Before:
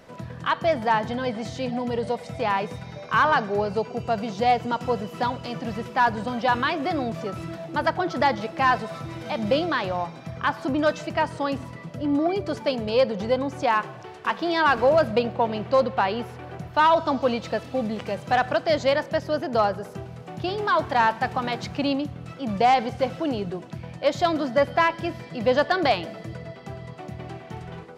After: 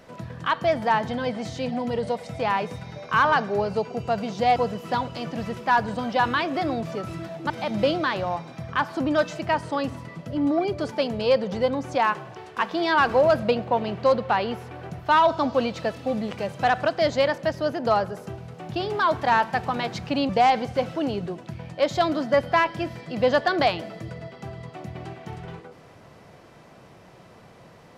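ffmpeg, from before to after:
-filter_complex "[0:a]asplit=4[a][b][c][d];[a]atrim=end=4.562[e];[b]atrim=start=4.848:end=7.792[f];[c]atrim=start=9.178:end=21.972[g];[d]atrim=start=22.528[h];[e][f]acrossfade=d=0.004:c1=hsin:c2=hsin[i];[i][g]acrossfade=d=0.004:c1=hsin:c2=hsin[j];[j][h]acrossfade=d=0.004:c1=hsin:c2=hsin"

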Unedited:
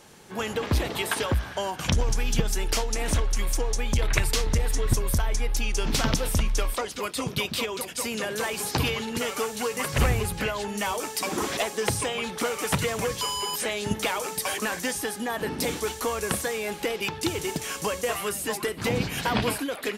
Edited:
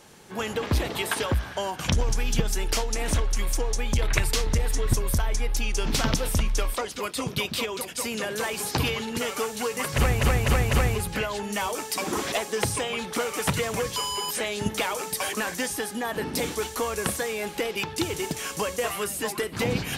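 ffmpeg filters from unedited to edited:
-filter_complex "[0:a]asplit=4[a][b][c][d];[a]atrim=end=10.212[e];[b]atrim=start=9.958:end=10.212[f];[c]atrim=start=9.958:end=10.212[g];[d]atrim=start=9.958[h];[e][f]acrossfade=d=0.004:c1=hsin:c2=hsin[i];[i][g]acrossfade=d=0.004:c1=hsin:c2=hsin[j];[j][h]acrossfade=d=0.004:c1=hsin:c2=hsin"

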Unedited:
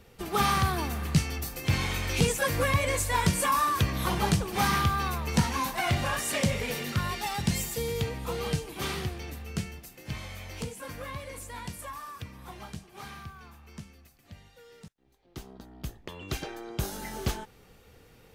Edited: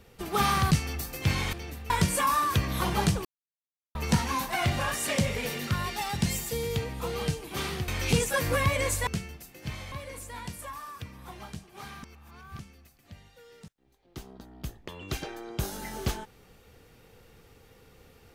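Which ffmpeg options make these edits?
-filter_complex "[0:a]asplit=11[a][b][c][d][e][f][g][h][i][j][k];[a]atrim=end=0.712[l];[b]atrim=start=1.138:end=1.962[m];[c]atrim=start=9.128:end=9.502[n];[d]atrim=start=3.148:end=4.5,asetpts=PTS-STARTPTS,afade=t=out:st=1.348:d=0.004:c=hsin[o];[e]atrim=start=4.5:end=5.2,asetpts=PTS-STARTPTS,volume=0[p];[f]atrim=start=5.2:end=9.132,asetpts=PTS-STARTPTS,afade=t=in:d=0.004:c=hsin[q];[g]atrim=start=1.958:end=3.152[r];[h]atrim=start=9.498:end=10.352[s];[i]atrim=start=11.118:end=13.232[t];[j]atrim=start=13.228:end=13.792,asetpts=PTS-STARTPTS,areverse[u];[k]atrim=start=13.788[v];[l][m]acrossfade=d=0.004:c1=hsin:c2=hsin[w];[w][n]acrossfade=d=0.004:c1=hsin:c2=hsin[x];[o][p][q]concat=n=3:v=0:a=1[y];[x][y]acrossfade=d=0.004:c1=hsin:c2=hsin[z];[z][r]acrossfade=d=0.004:c1=hsin:c2=hsin[aa];[aa][s]acrossfade=d=0.004:c1=hsin:c2=hsin[ab];[ab][t]acrossfade=d=0.004:c1=hsin:c2=hsin[ac];[ac][u]acrossfade=d=0.004:c1=hsin:c2=hsin[ad];[ad][v]acrossfade=d=0.004:c1=hsin:c2=hsin"

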